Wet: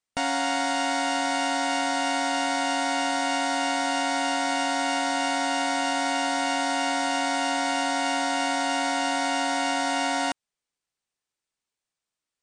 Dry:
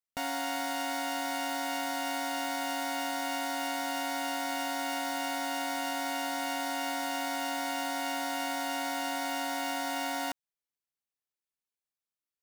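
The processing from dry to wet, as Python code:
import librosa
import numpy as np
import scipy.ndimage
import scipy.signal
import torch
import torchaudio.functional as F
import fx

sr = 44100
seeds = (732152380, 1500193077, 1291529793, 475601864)

y = fx.brickwall_lowpass(x, sr, high_hz=9600.0)
y = y * librosa.db_to_amplitude(8.0)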